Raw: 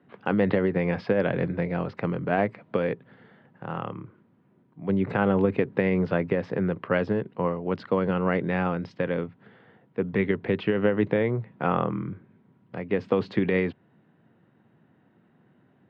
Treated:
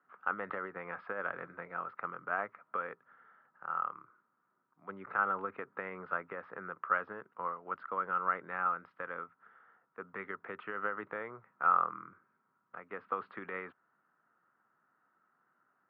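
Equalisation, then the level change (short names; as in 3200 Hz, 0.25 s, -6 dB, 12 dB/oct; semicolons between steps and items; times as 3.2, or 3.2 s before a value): band-pass 1300 Hz, Q 7.6; air absorption 210 m; +7.0 dB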